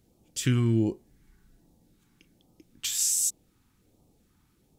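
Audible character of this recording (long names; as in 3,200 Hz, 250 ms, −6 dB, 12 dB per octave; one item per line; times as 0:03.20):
phaser sweep stages 2, 1.3 Hz, lowest notch 560–1,500 Hz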